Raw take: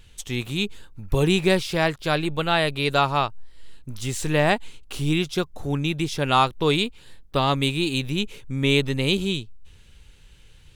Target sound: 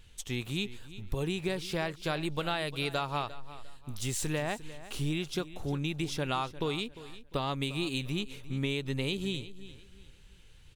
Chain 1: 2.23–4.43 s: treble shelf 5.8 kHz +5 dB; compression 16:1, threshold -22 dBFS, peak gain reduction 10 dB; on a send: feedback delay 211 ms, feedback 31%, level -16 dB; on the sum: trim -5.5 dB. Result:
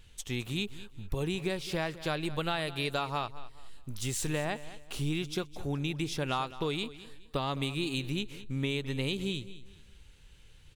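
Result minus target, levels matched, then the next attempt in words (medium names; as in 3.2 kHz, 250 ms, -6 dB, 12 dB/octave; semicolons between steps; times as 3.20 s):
echo 140 ms early
2.23–4.43 s: treble shelf 5.8 kHz +5 dB; compression 16:1, threshold -22 dBFS, peak gain reduction 10 dB; on a send: feedback delay 351 ms, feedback 31%, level -16 dB; on the sum: trim -5.5 dB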